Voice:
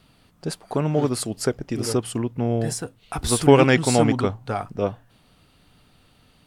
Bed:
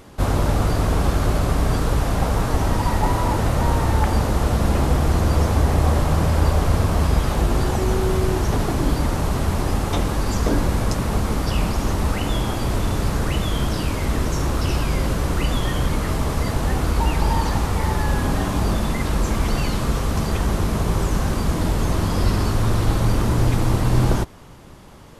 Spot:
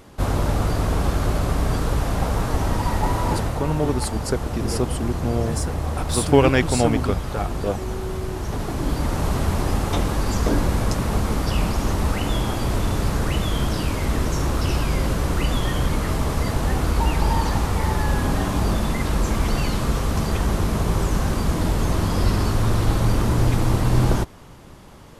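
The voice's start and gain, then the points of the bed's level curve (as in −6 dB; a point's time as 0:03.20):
2.85 s, −1.5 dB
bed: 0:03.36 −2 dB
0:03.62 −8 dB
0:08.32 −8 dB
0:09.27 −0.5 dB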